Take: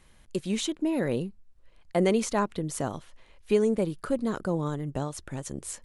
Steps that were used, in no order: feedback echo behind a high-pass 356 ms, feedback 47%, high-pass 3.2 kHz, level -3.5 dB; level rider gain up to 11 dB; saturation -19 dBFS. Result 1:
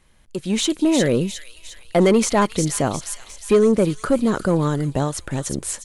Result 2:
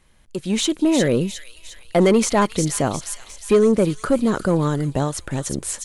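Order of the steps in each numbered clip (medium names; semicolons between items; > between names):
saturation > feedback echo behind a high-pass > level rider; saturation > level rider > feedback echo behind a high-pass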